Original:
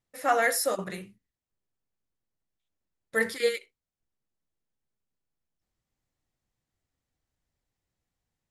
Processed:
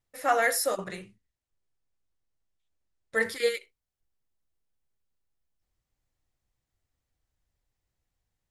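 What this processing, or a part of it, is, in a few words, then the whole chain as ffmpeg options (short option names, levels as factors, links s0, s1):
low shelf boost with a cut just above: -filter_complex "[0:a]lowshelf=f=100:g=7,equalizer=f=200:t=o:w=1.2:g=-5,asettb=1/sr,asplit=3[s0][s1][s2];[s0]atrim=end=0.804[s3];[s1]atrim=start=0.8:end=3.25,asetpts=PTS-STARTPTS,afade=t=in:d=0.004:c=qsin,afade=t=out:st=2.446:d=0.004:c=qsin,lowpass=f=9500:w=0.5412,lowpass=f=9500:w=1.3066[s4];[s2]atrim=start=3.246[s5];[s3][s4]acrossfade=d=0.004:c1=hsin:c2=qsin[s6];[s6][s5]acrossfade=d=0.004:c1=qsin:c2=hsin"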